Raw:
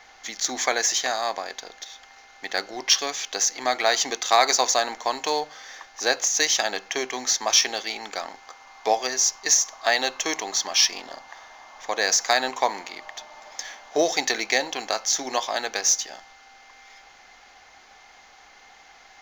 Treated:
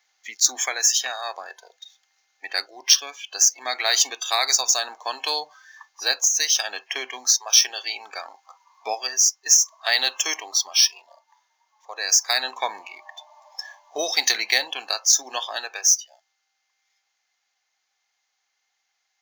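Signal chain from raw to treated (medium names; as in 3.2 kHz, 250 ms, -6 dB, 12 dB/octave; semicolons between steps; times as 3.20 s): tilt EQ +4.5 dB/octave; gain riding within 3 dB 0.5 s; spectral noise reduction 21 dB; trim -5.5 dB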